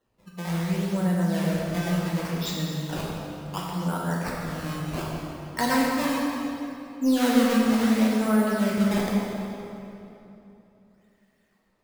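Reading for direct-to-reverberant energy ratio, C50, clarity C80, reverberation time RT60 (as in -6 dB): -4.5 dB, -1.5 dB, 0.0 dB, 3.0 s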